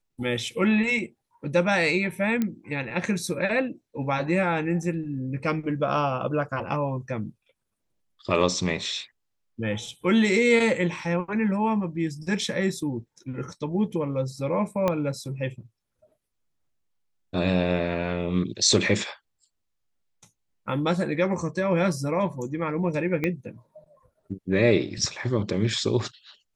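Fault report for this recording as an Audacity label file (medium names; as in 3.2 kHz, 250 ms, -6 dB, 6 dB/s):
2.420000	2.420000	pop -13 dBFS
14.880000	14.880000	pop -11 dBFS
23.240000	23.240000	pop -14 dBFS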